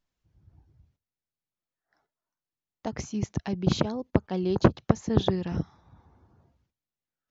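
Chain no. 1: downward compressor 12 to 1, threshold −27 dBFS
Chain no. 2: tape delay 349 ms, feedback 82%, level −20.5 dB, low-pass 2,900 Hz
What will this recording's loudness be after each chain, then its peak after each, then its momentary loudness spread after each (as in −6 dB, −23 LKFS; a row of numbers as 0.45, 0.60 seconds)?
−34.5, −28.0 LKFS; −13.5, −4.5 dBFS; 5, 14 LU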